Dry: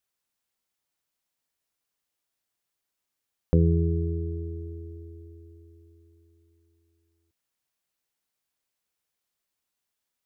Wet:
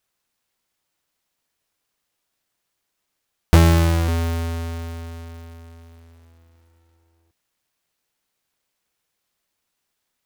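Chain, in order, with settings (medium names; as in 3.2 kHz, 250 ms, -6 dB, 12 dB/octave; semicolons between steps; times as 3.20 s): square wave that keeps the level; trim +4 dB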